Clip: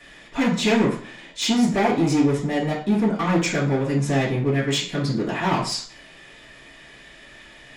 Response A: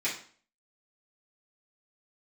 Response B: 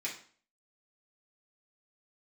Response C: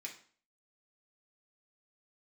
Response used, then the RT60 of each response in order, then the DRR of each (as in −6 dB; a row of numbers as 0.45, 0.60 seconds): A; 0.45, 0.45, 0.45 seconds; −9.5, −5.5, −1.5 decibels